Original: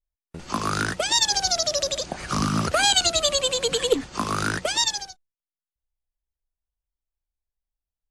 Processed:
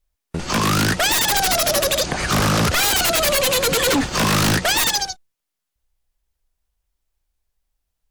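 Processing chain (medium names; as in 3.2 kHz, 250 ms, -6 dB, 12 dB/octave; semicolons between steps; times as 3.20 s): 3.86–4.56 s: waveshaping leveller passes 1; sine folder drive 15 dB, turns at -8 dBFS; trim -6 dB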